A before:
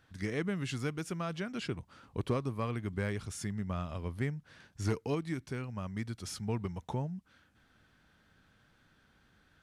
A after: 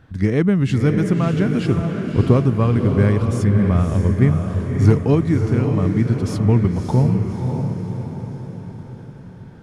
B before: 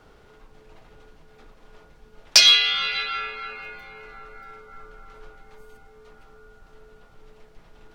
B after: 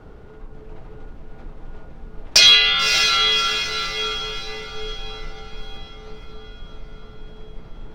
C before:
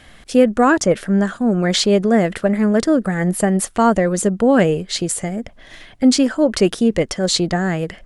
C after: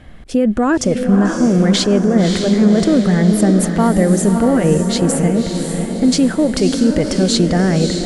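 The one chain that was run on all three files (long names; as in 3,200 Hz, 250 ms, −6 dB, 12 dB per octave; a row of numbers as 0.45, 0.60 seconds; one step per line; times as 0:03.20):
low-shelf EQ 420 Hz +9 dB
brickwall limiter −6.5 dBFS
on a send: feedback delay with all-pass diffusion 592 ms, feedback 52%, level −5 dB
on the sum: one half of a high-frequency compander decoder only
normalise the peak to −1.5 dBFS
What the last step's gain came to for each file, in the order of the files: +12.0, +5.0, 0.0 decibels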